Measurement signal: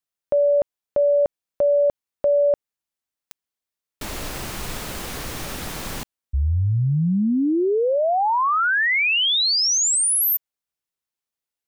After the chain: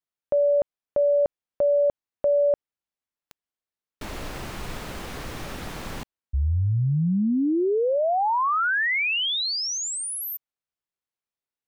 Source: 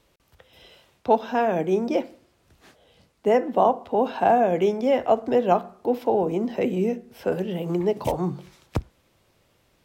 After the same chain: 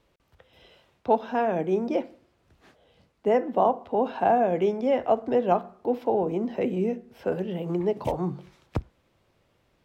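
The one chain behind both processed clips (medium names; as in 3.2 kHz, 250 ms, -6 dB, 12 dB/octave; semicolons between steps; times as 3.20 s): treble shelf 4.8 kHz -10.5 dB; trim -2.5 dB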